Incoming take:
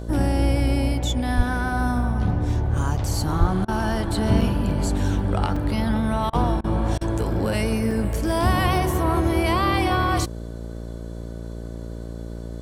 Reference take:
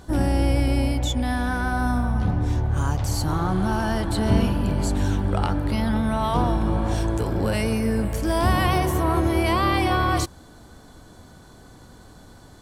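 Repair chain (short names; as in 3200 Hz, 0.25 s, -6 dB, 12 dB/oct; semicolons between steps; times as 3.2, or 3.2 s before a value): de-hum 57.4 Hz, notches 11; 1.36–1.48 HPF 140 Hz 24 dB/oct; 3.39–3.51 HPF 140 Hz 24 dB/oct; interpolate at 4.41/5.56/6.34/7.91, 4 ms; interpolate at 3.65/6.3/6.61/6.98, 30 ms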